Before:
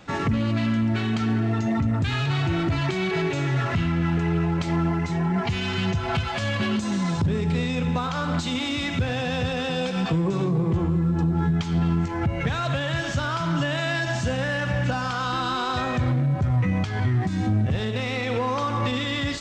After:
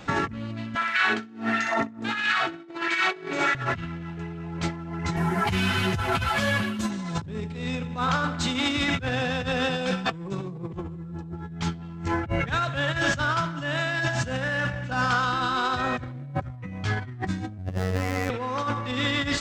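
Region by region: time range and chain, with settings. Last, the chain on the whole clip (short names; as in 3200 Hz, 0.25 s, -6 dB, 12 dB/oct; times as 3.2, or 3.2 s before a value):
0.75–3.55 LFO high-pass sine 1.5 Hz 240–2100 Hz + flutter echo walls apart 10.7 m, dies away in 0.72 s
5.16–6.9 CVSD 64 kbps + ensemble effect
17.58–18.3 median filter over 15 samples + robotiser 92.9 Hz
whole clip: negative-ratio compressor -28 dBFS, ratio -0.5; dynamic EQ 1500 Hz, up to +5 dB, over -44 dBFS, Q 2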